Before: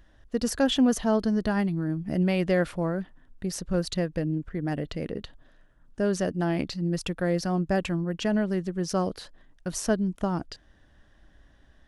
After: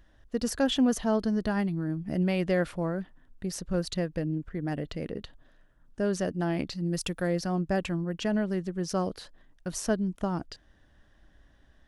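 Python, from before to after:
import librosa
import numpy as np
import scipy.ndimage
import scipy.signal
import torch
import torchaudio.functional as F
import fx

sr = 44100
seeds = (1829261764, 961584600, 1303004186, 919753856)

y = fx.high_shelf(x, sr, hz=fx.line((6.75, 8200.0), (7.26, 4300.0)), db=10.0, at=(6.75, 7.26), fade=0.02)
y = y * 10.0 ** (-2.5 / 20.0)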